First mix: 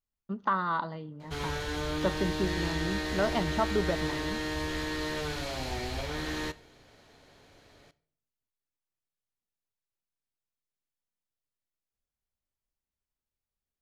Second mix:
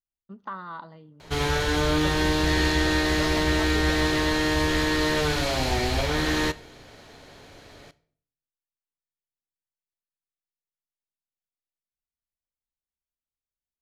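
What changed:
speech −8.0 dB
background +10.0 dB

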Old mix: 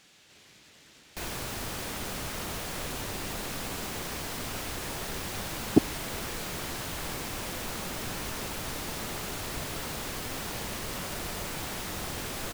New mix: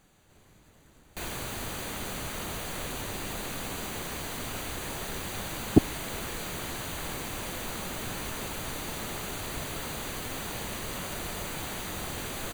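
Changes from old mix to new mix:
speech: remove meter weighting curve D
master: add Butterworth band-reject 5,300 Hz, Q 5.7

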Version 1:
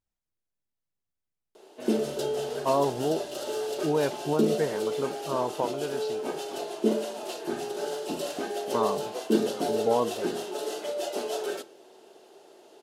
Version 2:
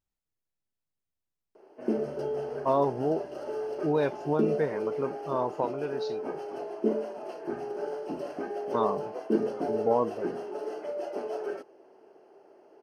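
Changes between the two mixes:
background: add moving average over 12 samples
reverb: off

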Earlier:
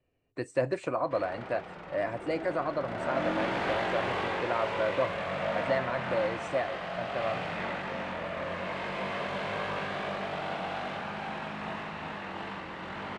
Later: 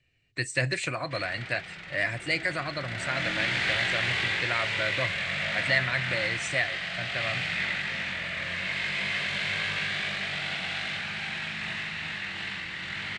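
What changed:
speech +4.0 dB
master: add octave-band graphic EQ 125/250/500/1,000/2,000/4,000/8,000 Hz +6/−6/−8/−10/+11/+9/+11 dB

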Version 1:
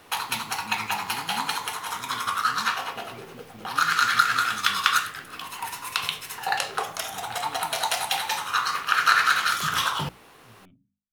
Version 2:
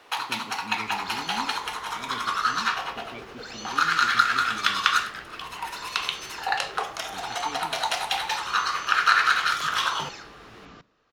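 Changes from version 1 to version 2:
speech +11.0 dB
second sound: unmuted
master: add three-way crossover with the lows and the highs turned down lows −13 dB, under 310 Hz, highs −12 dB, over 6,700 Hz

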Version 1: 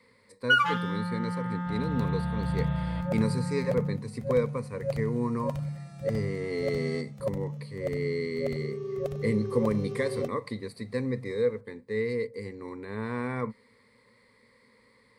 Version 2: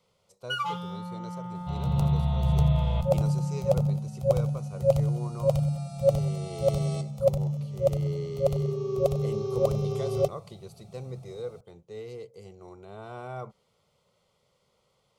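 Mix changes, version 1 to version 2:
speech: remove EQ curve with evenly spaced ripples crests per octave 0.94, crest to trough 16 dB
second sound +10.5 dB
master: add phaser with its sweep stopped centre 700 Hz, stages 4

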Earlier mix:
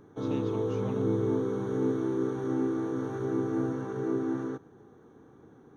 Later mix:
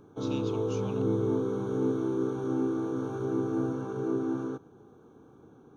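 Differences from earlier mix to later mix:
speech: add spectral tilt +4 dB per octave
master: add Butterworth band-reject 1,900 Hz, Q 2.9

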